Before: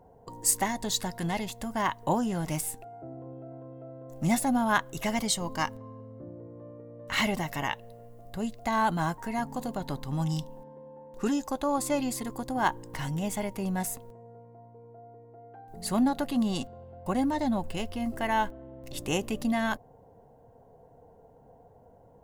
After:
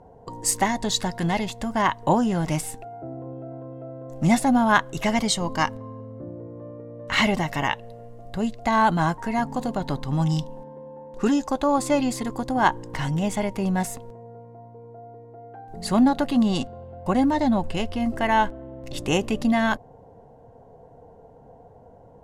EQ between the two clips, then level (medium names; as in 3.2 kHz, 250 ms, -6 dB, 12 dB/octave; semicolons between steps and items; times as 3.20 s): distance through air 50 m; +7.0 dB